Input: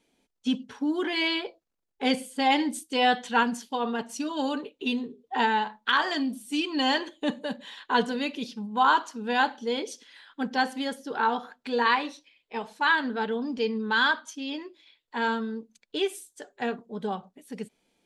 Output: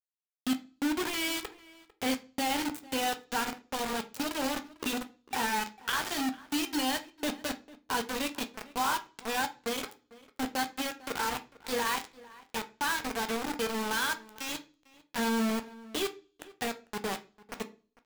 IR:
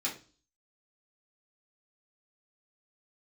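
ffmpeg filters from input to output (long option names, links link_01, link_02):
-filter_complex "[0:a]asplit=3[link_01][link_02][link_03];[link_01]afade=type=out:start_time=15.18:duration=0.02[link_04];[link_02]equalizer=frequency=84:width=0.33:gain=14.5,afade=type=in:start_time=15.18:duration=0.02,afade=type=out:start_time=15.59:duration=0.02[link_05];[link_03]afade=type=in:start_time=15.59:duration=0.02[link_06];[link_04][link_05][link_06]amix=inputs=3:normalize=0,acompressor=threshold=-31dB:ratio=2,acrusher=bits=4:mix=0:aa=0.000001,asplit=2[link_07][link_08];[link_08]adelay=449,volume=-20dB,highshelf=frequency=4000:gain=-10.1[link_09];[link_07][link_09]amix=inputs=2:normalize=0,asplit=2[link_10][link_11];[1:a]atrim=start_sample=2205,adelay=12[link_12];[link_11][link_12]afir=irnorm=-1:irlink=0,volume=-12.5dB[link_13];[link_10][link_13]amix=inputs=2:normalize=0,volume=-2.5dB"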